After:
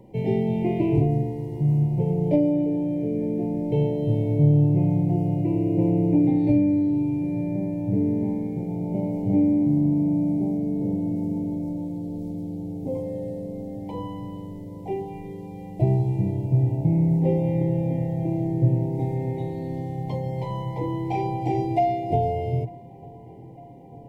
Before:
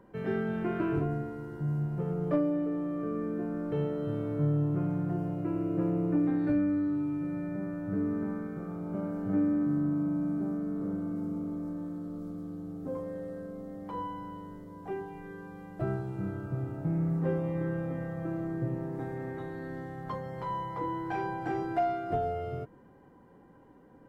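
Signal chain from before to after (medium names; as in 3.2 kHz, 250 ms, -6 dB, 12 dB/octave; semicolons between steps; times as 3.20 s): elliptic band-stop 900–2100 Hz, stop band 40 dB; peaking EQ 120 Hz +10.5 dB 0.32 oct; on a send: filtered feedback delay 900 ms, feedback 74%, low-pass 2.3 kHz, level -23 dB; on the sum: trim +8 dB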